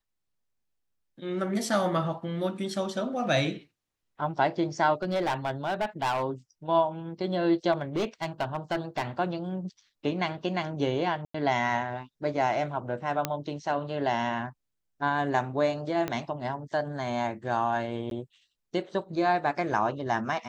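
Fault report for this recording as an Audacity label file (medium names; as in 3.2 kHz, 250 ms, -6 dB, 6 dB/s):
5.020000	6.240000	clipped -23.5 dBFS
7.720000	9.030000	clipped -23.5 dBFS
11.250000	11.340000	dropout 94 ms
13.250000	13.250000	pop -10 dBFS
16.080000	16.080000	pop -16 dBFS
18.100000	18.110000	dropout 12 ms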